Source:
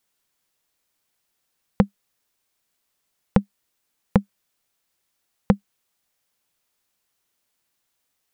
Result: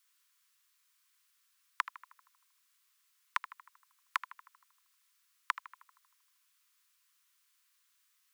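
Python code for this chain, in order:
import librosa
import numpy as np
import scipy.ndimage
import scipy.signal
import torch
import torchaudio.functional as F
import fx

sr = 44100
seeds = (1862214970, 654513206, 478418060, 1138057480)

p1 = scipy.signal.sosfilt(scipy.signal.butter(16, 1000.0, 'highpass', fs=sr, output='sos'), x)
p2 = p1 + fx.echo_filtered(p1, sr, ms=78, feedback_pct=64, hz=2300.0, wet_db=-12.5, dry=0)
y = p2 * librosa.db_to_amplitude(1.5)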